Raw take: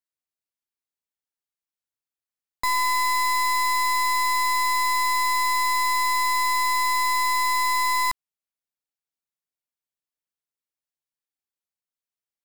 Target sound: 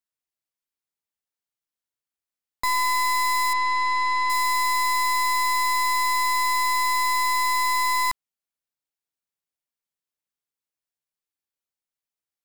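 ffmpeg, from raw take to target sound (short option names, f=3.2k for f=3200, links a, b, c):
-filter_complex "[0:a]asettb=1/sr,asplit=3[a][b][c];[a]atrim=end=3.534[d];[b]atrim=start=3.53:end=4.3,asetpts=PTS-STARTPTS,afade=t=in:d=0.004:c=qsin,afade=t=out:st=0.766:d=0.004:c=qsin,lowpass=3.8k[e];[c]atrim=start=4.296[f];[d][e]acrossfade=d=0.004:c1=hsin:c2=qsin[g];[g][f]acrossfade=d=0.004:c1=qsin:c2=hsin"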